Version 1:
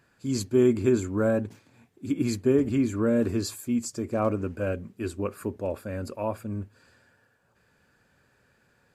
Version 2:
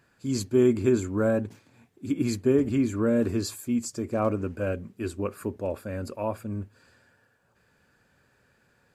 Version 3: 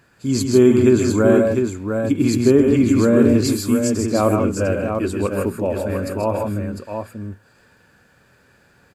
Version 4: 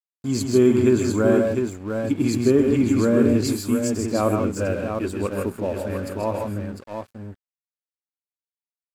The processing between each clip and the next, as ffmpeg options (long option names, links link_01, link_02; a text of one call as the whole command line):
ffmpeg -i in.wav -af "deesser=0.5" out.wav
ffmpeg -i in.wav -af "aecho=1:1:132|157|702:0.447|0.473|0.501,volume=8dB" out.wav
ffmpeg -i in.wav -af "aeval=exprs='sgn(val(0))*max(abs(val(0))-0.0112,0)':channel_layout=same,volume=-3.5dB" out.wav